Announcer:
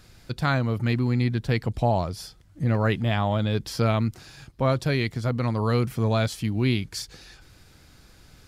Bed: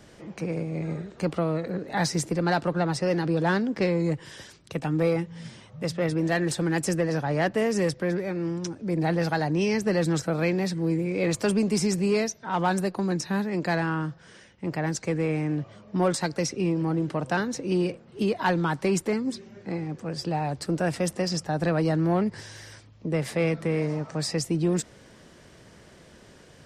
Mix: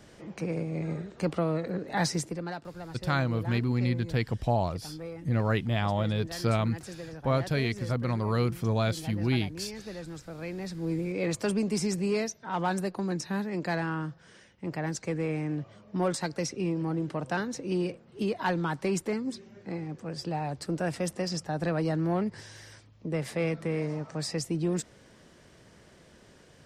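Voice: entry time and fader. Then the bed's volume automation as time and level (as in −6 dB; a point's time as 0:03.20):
2.65 s, −4.0 dB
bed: 0:02.11 −2 dB
0:02.65 −16.5 dB
0:10.25 −16.5 dB
0:10.96 −4.5 dB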